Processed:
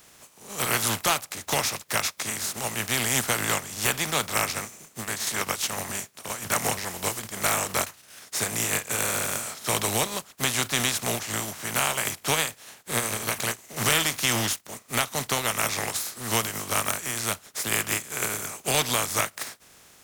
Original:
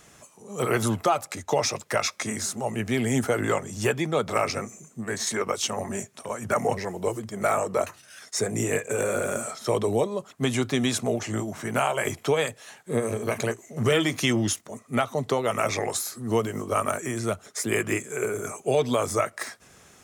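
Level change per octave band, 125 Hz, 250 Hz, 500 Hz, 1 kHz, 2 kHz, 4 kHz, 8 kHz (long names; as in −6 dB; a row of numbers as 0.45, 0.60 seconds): −4.0, −7.0, −8.0, −0.5, +3.5, +5.5, +6.5 decibels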